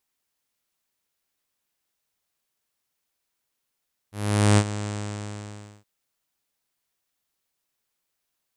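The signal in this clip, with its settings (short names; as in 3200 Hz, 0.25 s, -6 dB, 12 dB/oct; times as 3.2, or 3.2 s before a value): synth note saw G#2 24 dB/oct, low-pass 8000 Hz, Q 3.7, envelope 0.5 oct, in 0.57 s, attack 0.454 s, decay 0.06 s, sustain -14 dB, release 0.98 s, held 0.74 s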